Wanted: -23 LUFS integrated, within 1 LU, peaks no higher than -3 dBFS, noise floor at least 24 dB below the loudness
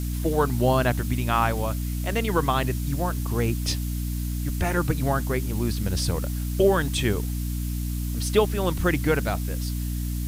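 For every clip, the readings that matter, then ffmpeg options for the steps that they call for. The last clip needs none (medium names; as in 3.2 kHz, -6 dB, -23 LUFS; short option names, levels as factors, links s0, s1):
hum 60 Hz; highest harmonic 300 Hz; hum level -26 dBFS; noise floor -28 dBFS; noise floor target -50 dBFS; loudness -25.5 LUFS; peak level -6.0 dBFS; loudness target -23.0 LUFS
-> -af "bandreject=f=60:t=h:w=4,bandreject=f=120:t=h:w=4,bandreject=f=180:t=h:w=4,bandreject=f=240:t=h:w=4,bandreject=f=300:t=h:w=4"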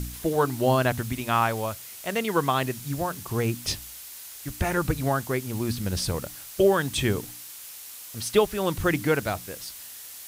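hum not found; noise floor -42 dBFS; noise floor target -51 dBFS
-> -af "afftdn=nr=9:nf=-42"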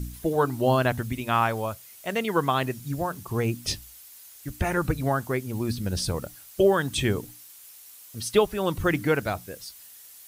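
noise floor -48 dBFS; noise floor target -51 dBFS
-> -af "afftdn=nr=6:nf=-48"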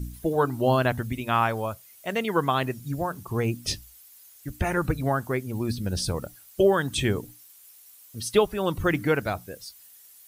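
noise floor -52 dBFS; loudness -26.5 LUFS; peak level -7.0 dBFS; loudness target -23.0 LUFS
-> -af "volume=1.5"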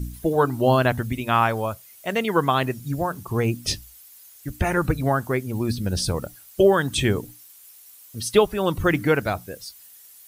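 loudness -23.0 LUFS; peak level -3.5 dBFS; noise floor -48 dBFS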